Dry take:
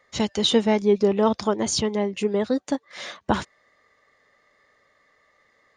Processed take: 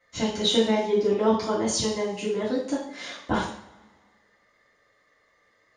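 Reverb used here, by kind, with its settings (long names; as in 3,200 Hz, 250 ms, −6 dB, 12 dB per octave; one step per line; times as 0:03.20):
coupled-rooms reverb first 0.54 s, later 1.8 s, from −21 dB, DRR −9.5 dB
level −11.5 dB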